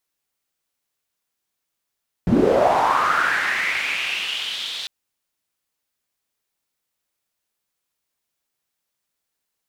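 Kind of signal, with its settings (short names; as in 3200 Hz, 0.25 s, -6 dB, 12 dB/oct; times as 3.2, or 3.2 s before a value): swept filtered noise pink, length 2.60 s bandpass, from 150 Hz, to 3700 Hz, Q 4.9, linear, gain ramp -15 dB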